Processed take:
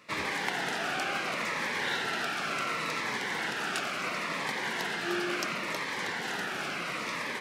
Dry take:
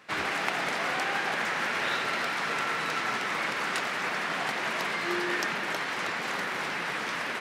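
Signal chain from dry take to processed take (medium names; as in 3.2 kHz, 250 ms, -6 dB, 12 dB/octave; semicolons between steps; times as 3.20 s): Shepard-style phaser falling 0.71 Hz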